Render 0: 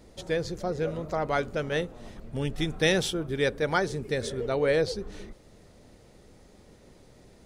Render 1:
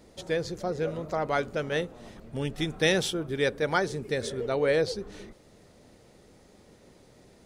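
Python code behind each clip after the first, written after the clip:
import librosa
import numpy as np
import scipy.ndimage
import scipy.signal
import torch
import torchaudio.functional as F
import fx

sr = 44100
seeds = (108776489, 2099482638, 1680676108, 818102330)

y = fx.low_shelf(x, sr, hz=68.0, db=-10.0)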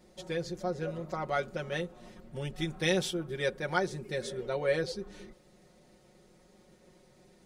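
y = x + 0.84 * np.pad(x, (int(5.5 * sr / 1000.0), 0))[:len(x)]
y = y * librosa.db_to_amplitude(-7.0)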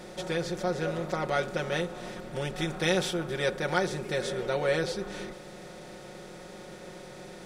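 y = fx.bin_compress(x, sr, power=0.6)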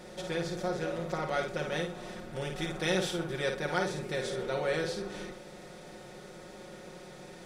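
y = fx.echo_multitap(x, sr, ms=(53, 124), db=(-5.5, -19.5))
y = y * librosa.db_to_amplitude(-4.0)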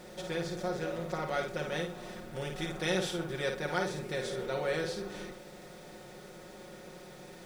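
y = fx.quant_dither(x, sr, seeds[0], bits=10, dither='none')
y = y * librosa.db_to_amplitude(-1.5)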